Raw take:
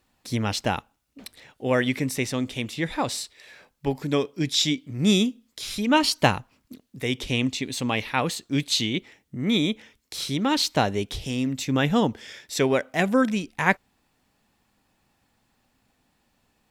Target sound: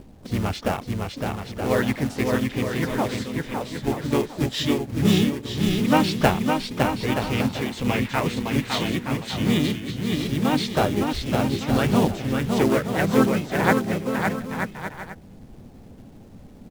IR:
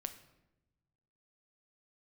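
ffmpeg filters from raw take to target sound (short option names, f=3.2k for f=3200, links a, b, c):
-filter_complex "[0:a]aemphasis=mode=reproduction:type=75fm,acrossover=split=600[a][b];[a]acompressor=mode=upward:threshold=-27dB:ratio=2.5[c];[c][b]amix=inputs=2:normalize=0,acrusher=bits=4:mode=log:mix=0:aa=0.000001,aecho=1:1:560|924|1161|1314|1414:0.631|0.398|0.251|0.158|0.1,asplit=4[d][e][f][g];[e]asetrate=22050,aresample=44100,atempo=2,volume=-10dB[h];[f]asetrate=37084,aresample=44100,atempo=1.18921,volume=-2dB[i];[g]asetrate=88200,aresample=44100,atempo=0.5,volume=-16dB[j];[d][h][i][j]amix=inputs=4:normalize=0,volume=-2dB"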